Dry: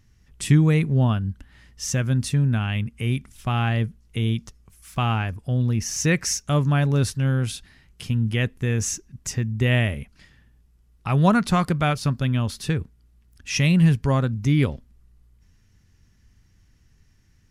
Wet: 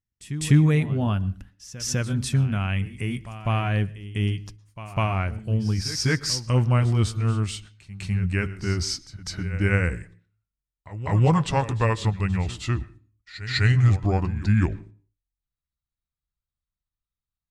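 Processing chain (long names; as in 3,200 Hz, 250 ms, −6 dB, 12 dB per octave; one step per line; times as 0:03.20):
pitch glide at a constant tempo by −7 semitones starting unshifted
noise gate −45 dBFS, range −31 dB
echo ahead of the sound 201 ms −14.5 dB
on a send at −21 dB: convolution reverb RT60 0.40 s, pre-delay 106 ms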